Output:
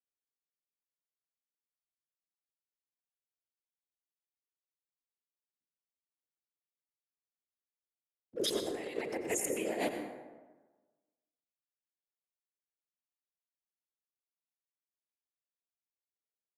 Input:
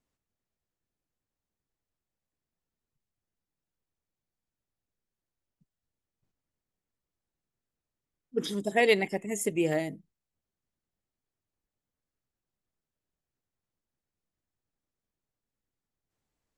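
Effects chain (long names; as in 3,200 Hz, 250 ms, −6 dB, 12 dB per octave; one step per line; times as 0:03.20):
adaptive Wiener filter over 41 samples
noise gate with hold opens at −51 dBFS
high-pass filter 360 Hz 24 dB per octave
high-shelf EQ 4,900 Hz +7 dB
mains-hum notches 50/100/150/200/250/300/350/400/450/500 Hz
compressor whose output falls as the input rises −37 dBFS, ratio −1
random phases in short frames
tape delay 123 ms, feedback 45%, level −18 dB, low-pass 4,000 Hz
dense smooth reverb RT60 1.3 s, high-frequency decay 0.45×, pre-delay 75 ms, DRR 6 dB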